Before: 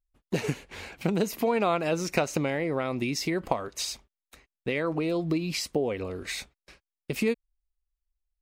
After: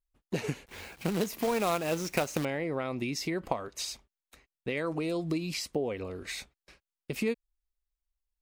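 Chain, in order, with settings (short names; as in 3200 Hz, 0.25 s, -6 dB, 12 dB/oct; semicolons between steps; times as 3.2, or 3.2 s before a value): 0.66–2.45 companded quantiser 4-bit; 4.77–5.54 bell 8400 Hz +9.5 dB 1.3 oct; gain -4 dB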